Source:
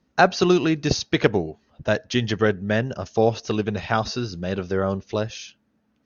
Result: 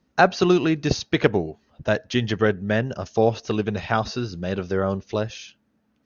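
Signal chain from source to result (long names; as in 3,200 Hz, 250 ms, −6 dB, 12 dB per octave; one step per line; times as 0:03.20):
dynamic equaliser 5,500 Hz, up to −4 dB, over −42 dBFS, Q 1.3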